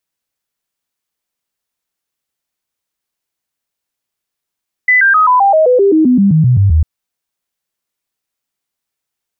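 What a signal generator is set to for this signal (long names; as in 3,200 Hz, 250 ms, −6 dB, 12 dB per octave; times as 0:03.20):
stepped sweep 2,000 Hz down, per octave 3, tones 15, 0.13 s, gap 0.00 s −5.5 dBFS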